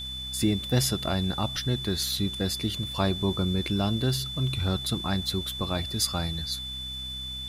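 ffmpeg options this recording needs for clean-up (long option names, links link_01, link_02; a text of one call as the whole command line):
ffmpeg -i in.wav -af "adeclick=threshold=4,bandreject=frequency=64.5:width_type=h:width=4,bandreject=frequency=129:width_type=h:width=4,bandreject=frequency=193.5:width_type=h:width=4,bandreject=frequency=258:width_type=h:width=4,bandreject=frequency=3500:width=30,afwtdn=0.0025" out.wav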